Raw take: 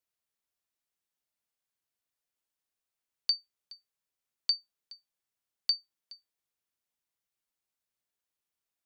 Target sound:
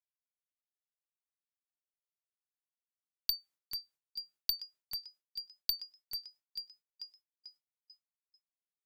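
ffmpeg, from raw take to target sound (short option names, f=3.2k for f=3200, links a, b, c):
-filter_complex "[0:a]asplit=7[a][b][c][d][e][f][g];[b]adelay=441,afreqshift=83,volume=-4.5dB[h];[c]adelay=882,afreqshift=166,volume=-10.9dB[i];[d]adelay=1323,afreqshift=249,volume=-17.3dB[j];[e]adelay=1764,afreqshift=332,volume=-23.6dB[k];[f]adelay=2205,afreqshift=415,volume=-30dB[l];[g]adelay=2646,afreqshift=498,volume=-36.4dB[m];[a][h][i][j][k][l][m]amix=inputs=7:normalize=0,aeval=exprs='0.158*(cos(1*acos(clip(val(0)/0.158,-1,1)))-cos(1*PI/2))+0.0708*(cos(3*acos(clip(val(0)/0.158,-1,1)))-cos(3*PI/2))+0.00447*(cos(4*acos(clip(val(0)/0.158,-1,1)))-cos(4*PI/2))+0.0126*(cos(7*acos(clip(val(0)/0.158,-1,1)))-cos(7*PI/2))':c=same,agate=range=-33dB:threshold=-58dB:ratio=3:detection=peak"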